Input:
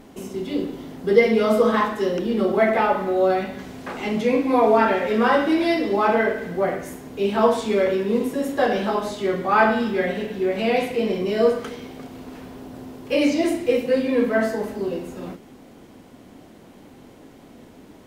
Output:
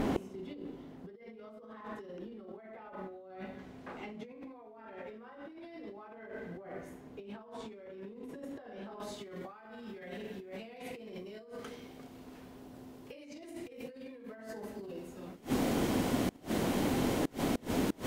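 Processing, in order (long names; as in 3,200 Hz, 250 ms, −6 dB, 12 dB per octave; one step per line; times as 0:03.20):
high-shelf EQ 4,100 Hz −11 dB, from 0:09.00 +2.5 dB
compressor whose output falls as the input rises −28 dBFS, ratio −1
gate with flip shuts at −29 dBFS, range −28 dB
level +9 dB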